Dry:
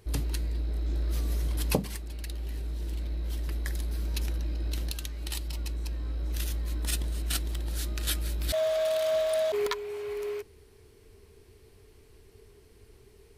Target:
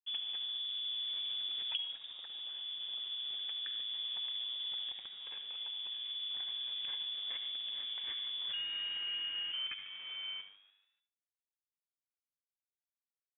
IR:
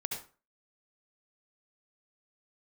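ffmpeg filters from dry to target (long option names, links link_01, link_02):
-filter_complex "[0:a]equalizer=frequency=180:width=4.7:gain=14,aeval=exprs='sgn(val(0))*max(abs(val(0))-0.0133,0)':channel_layout=same,lowpass=frequency=3000:width_type=q:width=0.5098,lowpass=frequency=3000:width_type=q:width=0.6013,lowpass=frequency=3000:width_type=q:width=0.9,lowpass=frequency=3000:width_type=q:width=2.563,afreqshift=-3500,asplit=5[link_01][link_02][link_03][link_04][link_05];[link_02]adelay=146,afreqshift=98,volume=-18dB[link_06];[link_03]adelay=292,afreqshift=196,volume=-23.8dB[link_07];[link_04]adelay=438,afreqshift=294,volume=-29.7dB[link_08];[link_05]adelay=584,afreqshift=392,volume=-35.5dB[link_09];[link_01][link_06][link_07][link_08][link_09]amix=inputs=5:normalize=0,asplit=2[link_10][link_11];[1:a]atrim=start_sample=2205[link_12];[link_11][link_12]afir=irnorm=-1:irlink=0,volume=-5dB[link_13];[link_10][link_13]amix=inputs=2:normalize=0,acrossover=split=710|1500[link_14][link_15][link_16];[link_14]acompressor=threshold=-60dB:ratio=4[link_17];[link_15]acompressor=threshold=-59dB:ratio=4[link_18];[link_16]acompressor=threshold=-29dB:ratio=4[link_19];[link_17][link_18][link_19]amix=inputs=3:normalize=0,volume=-8dB"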